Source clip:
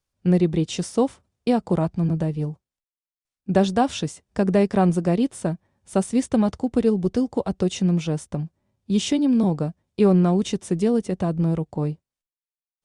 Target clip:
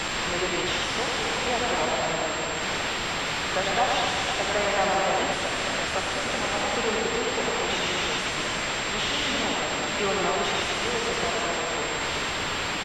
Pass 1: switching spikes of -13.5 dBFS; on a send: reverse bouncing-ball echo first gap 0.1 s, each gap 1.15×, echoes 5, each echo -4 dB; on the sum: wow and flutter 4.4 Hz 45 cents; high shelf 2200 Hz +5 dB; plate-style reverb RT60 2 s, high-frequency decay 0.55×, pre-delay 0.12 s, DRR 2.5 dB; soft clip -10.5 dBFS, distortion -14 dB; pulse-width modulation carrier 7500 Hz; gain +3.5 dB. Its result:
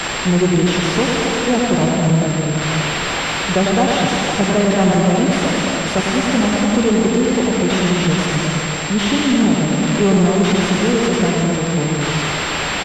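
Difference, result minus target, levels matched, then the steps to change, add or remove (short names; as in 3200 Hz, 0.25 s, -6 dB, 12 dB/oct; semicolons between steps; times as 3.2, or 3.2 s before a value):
soft clip: distortion -7 dB; 1000 Hz band -4.0 dB
add after wow and flutter: HPF 800 Hz 12 dB/oct; change: soft clip -18 dBFS, distortion -8 dB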